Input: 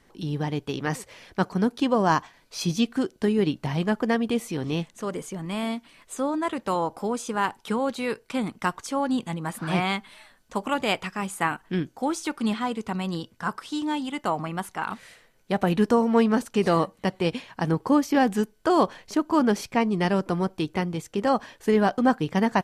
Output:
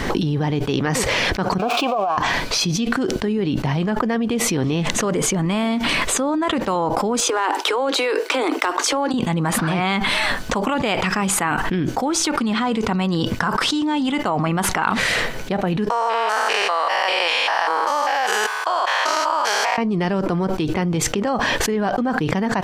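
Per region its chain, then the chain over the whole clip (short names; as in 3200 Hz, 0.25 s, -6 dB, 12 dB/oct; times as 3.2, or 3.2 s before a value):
1.58–2.18 switching spikes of -19.5 dBFS + vowel filter a + negative-ratio compressor -33 dBFS
7.2–9.14 steep high-pass 280 Hz 96 dB/oct + compressor, threshold -38 dBFS + overloaded stage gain 32 dB
15.9–19.78 stepped spectrum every 0.2 s + HPF 730 Hz 24 dB/oct
whole clip: bell 11000 Hz -10 dB 1.1 oct; fast leveller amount 100%; gain -3.5 dB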